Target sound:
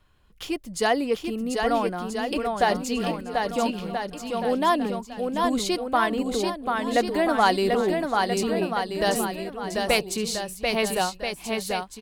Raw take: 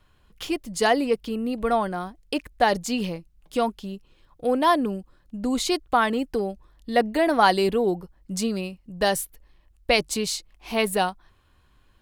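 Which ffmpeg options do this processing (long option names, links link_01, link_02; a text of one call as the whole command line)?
ffmpeg -i in.wav -af "aecho=1:1:740|1332|1806|2184|2488:0.631|0.398|0.251|0.158|0.1,volume=-2dB" out.wav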